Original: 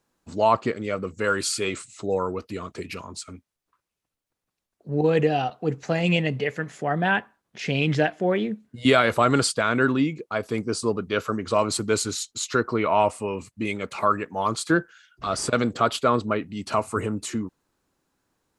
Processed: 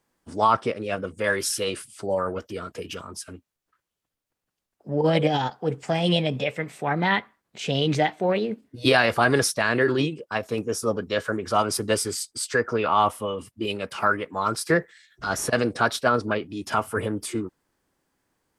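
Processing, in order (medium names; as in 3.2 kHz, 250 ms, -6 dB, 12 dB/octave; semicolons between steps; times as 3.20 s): formant shift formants +3 st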